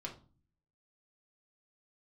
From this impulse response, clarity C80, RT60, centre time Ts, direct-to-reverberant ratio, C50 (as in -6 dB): 16.5 dB, 0.40 s, 15 ms, -1.5 dB, 11.0 dB